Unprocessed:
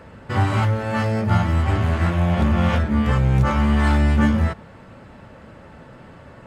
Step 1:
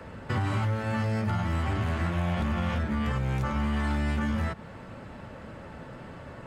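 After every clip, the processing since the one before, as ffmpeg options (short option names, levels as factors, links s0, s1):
-filter_complex "[0:a]alimiter=limit=0.251:level=0:latency=1,acrossover=split=140|310|870[s0][s1][s2][s3];[s0]acompressor=threshold=0.0282:ratio=4[s4];[s1]acompressor=threshold=0.02:ratio=4[s5];[s2]acompressor=threshold=0.00891:ratio=4[s6];[s3]acompressor=threshold=0.0158:ratio=4[s7];[s4][s5][s6][s7]amix=inputs=4:normalize=0"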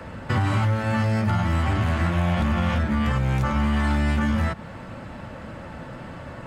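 -af "equalizer=f=420:w=7.2:g=-7.5,volume=2"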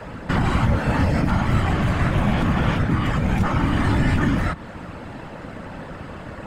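-af "afftfilt=real='hypot(re,im)*cos(2*PI*random(0))':imag='hypot(re,im)*sin(2*PI*random(1))':win_size=512:overlap=0.75,volume=2.66"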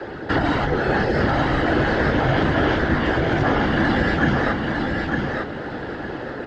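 -af "highpass=f=170:w=0.5412,highpass=f=170:w=1.3066,equalizer=f=180:t=q:w=4:g=-7,equalizer=f=260:t=q:w=4:g=-9,equalizer=f=400:t=q:w=4:g=9,equalizer=f=1200:t=q:w=4:g=-9,equalizer=f=1700:t=q:w=4:g=4,equalizer=f=2500:t=q:w=4:g=-9,lowpass=f=5100:w=0.5412,lowpass=f=5100:w=1.3066,aecho=1:1:905|1810|2715:0.631|0.158|0.0394,afreqshift=-77,volume=1.78"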